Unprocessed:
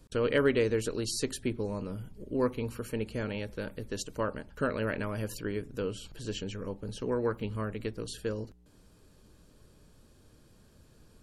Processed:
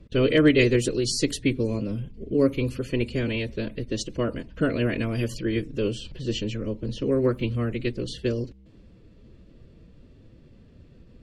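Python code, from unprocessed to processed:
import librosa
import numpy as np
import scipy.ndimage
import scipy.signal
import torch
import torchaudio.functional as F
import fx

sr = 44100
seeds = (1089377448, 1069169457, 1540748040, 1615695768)

y = fx.env_lowpass(x, sr, base_hz=2200.0, full_db=-26.5)
y = fx.band_shelf(y, sr, hz=1000.0, db=-9.5, octaves=1.7)
y = fx.pitch_keep_formants(y, sr, semitones=1.5)
y = y * 10.0 ** (9.0 / 20.0)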